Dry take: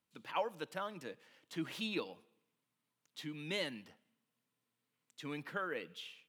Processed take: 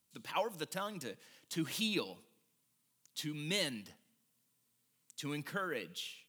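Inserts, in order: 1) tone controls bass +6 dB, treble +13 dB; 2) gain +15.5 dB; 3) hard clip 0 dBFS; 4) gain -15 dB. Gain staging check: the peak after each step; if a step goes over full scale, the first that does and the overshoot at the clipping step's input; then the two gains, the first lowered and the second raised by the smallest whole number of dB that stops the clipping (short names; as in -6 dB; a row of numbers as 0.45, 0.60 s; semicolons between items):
-20.5, -5.0, -5.0, -20.0 dBFS; no overload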